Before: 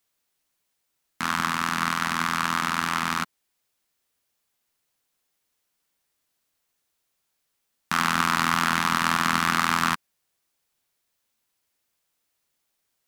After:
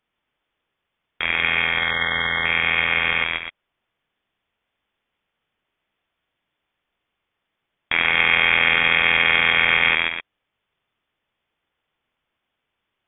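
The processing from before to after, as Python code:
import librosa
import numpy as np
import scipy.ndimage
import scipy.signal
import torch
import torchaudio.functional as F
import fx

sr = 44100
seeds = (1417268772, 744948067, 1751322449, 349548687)

y = fx.spec_erase(x, sr, start_s=1.65, length_s=0.81, low_hz=390.0, high_hz=1300.0)
y = fx.echo_multitap(y, sr, ms=(135, 255), db=(-5.5, -9.0))
y = fx.freq_invert(y, sr, carrier_hz=3500)
y = y * librosa.db_to_amplitude(4.0)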